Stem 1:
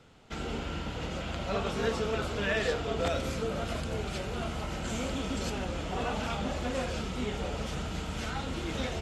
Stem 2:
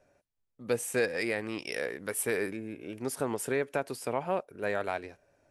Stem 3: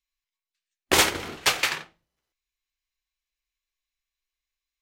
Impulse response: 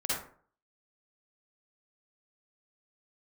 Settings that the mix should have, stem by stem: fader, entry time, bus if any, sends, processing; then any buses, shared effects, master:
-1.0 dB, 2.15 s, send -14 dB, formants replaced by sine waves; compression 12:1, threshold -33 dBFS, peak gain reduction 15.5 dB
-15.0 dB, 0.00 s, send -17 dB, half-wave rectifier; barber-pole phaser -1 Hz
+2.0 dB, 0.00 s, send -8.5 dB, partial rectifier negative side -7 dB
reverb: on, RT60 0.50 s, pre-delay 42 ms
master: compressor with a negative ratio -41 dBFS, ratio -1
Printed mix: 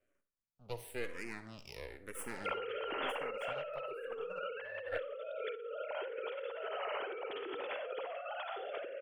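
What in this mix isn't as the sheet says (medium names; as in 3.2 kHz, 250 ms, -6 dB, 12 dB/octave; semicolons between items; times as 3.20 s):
stem 1: send -14 dB -> -4.5 dB; stem 3: muted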